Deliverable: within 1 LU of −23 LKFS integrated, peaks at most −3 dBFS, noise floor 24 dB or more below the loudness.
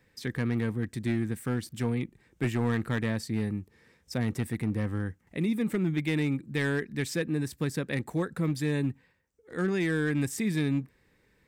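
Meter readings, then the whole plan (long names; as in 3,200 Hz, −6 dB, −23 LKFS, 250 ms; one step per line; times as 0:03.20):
share of clipped samples 0.9%; peaks flattened at −21.0 dBFS; integrated loudness −30.5 LKFS; sample peak −21.0 dBFS; target loudness −23.0 LKFS
→ clipped peaks rebuilt −21 dBFS
level +7.5 dB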